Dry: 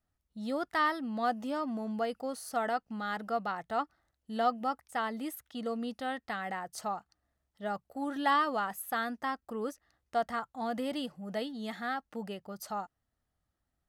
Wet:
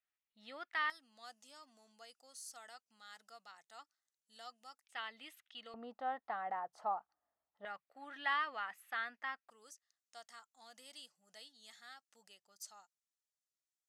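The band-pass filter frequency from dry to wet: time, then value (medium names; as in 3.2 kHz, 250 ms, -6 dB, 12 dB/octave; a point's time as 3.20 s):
band-pass filter, Q 1.9
2.4 kHz
from 0.90 s 7 kHz
from 4.84 s 2.8 kHz
from 5.74 s 870 Hz
from 7.65 s 2.2 kHz
from 9.50 s 6.8 kHz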